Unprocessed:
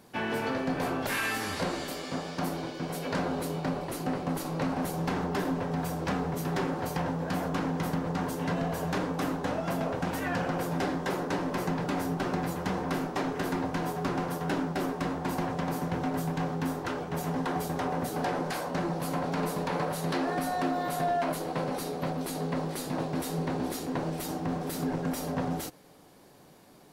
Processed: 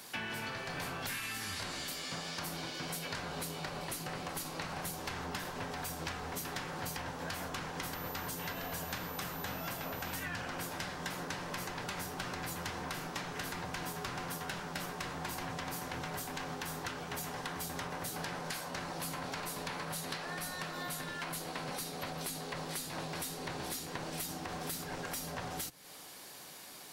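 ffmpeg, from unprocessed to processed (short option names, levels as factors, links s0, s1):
-filter_complex "[0:a]asettb=1/sr,asplit=3[s0][s1][s2];[s0]atrim=end=7.934[s3];[s1]atrim=start=7.93:end=10.23,asetpts=PTS-STARTPTS,afade=t=in:d=0.004:c=qsin,afade=t=out:st=2.296:d=0.004:c=qsin,aeval=exprs='val(0)+0.00316*sin(2*PI*14000*n/s)':c=same[s4];[s2]atrim=start=10.226[s5];[s3][s4]acrossfade=d=0.004:c1=hsin:c2=qsin[s6];[s6][s5]acrossfade=d=0.004:c1=qsin:c2=hsin,afftfilt=real='re*lt(hypot(re,im),0.2)':imag='im*lt(hypot(re,im),0.2)':win_size=1024:overlap=0.75,tiltshelf=f=970:g=-9.5,acrossover=split=200[s7][s8];[s8]acompressor=threshold=0.00708:ratio=6[s9];[s7][s9]amix=inputs=2:normalize=0,volume=1.58"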